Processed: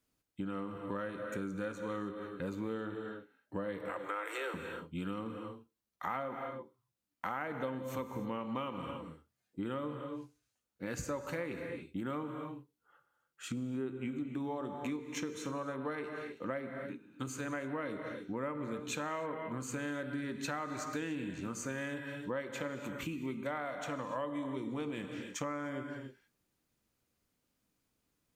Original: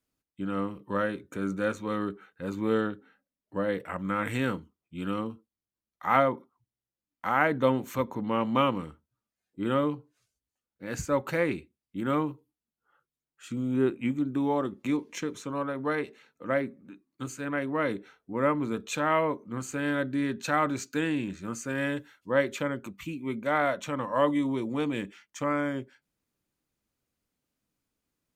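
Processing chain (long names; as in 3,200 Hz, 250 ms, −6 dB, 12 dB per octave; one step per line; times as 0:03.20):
0:03.90–0:04.54: Butterworth high-pass 320 Hz 96 dB per octave
reverb whose tail is shaped and stops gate 330 ms flat, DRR 8 dB
downward compressor 6 to 1, threshold −38 dBFS, peak gain reduction 19.5 dB
level +2 dB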